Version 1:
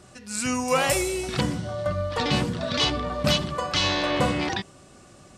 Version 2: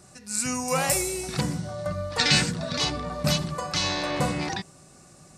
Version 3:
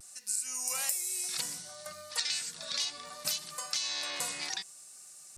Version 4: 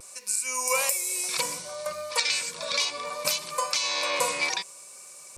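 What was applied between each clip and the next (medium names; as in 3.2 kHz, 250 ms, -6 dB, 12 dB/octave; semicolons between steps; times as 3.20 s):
graphic EQ with 31 bands 160 Hz +9 dB, 800 Hz +3 dB, 3.15 kHz -8 dB; time-frequency box 2.19–2.51 s, 1.3–9 kHz +11 dB; treble shelf 4.5 kHz +10 dB; trim -4.5 dB
differentiator; vibrato 0.64 Hz 36 cents; compression 16:1, threshold -34 dBFS, peak gain reduction 14.5 dB; trim +5 dB
small resonant body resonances 520/1000/2300 Hz, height 16 dB, ringing for 25 ms; trim +5 dB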